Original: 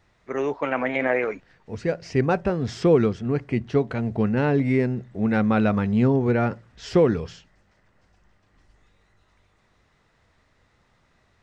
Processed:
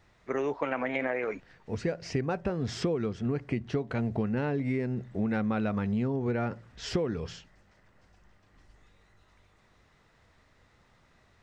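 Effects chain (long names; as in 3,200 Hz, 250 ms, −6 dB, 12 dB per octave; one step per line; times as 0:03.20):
downward compressor 10 to 1, threshold −26 dBFS, peak gain reduction 14 dB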